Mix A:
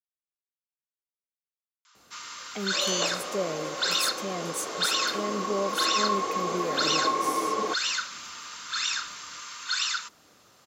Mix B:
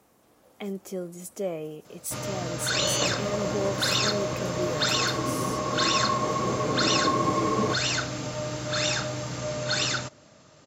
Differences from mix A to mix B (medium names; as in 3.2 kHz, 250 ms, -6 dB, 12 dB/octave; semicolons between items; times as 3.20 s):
speech: entry -1.95 s; first sound: remove rippled Chebyshev high-pass 960 Hz, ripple 3 dB; second sound: remove high-pass 410 Hz 12 dB/octave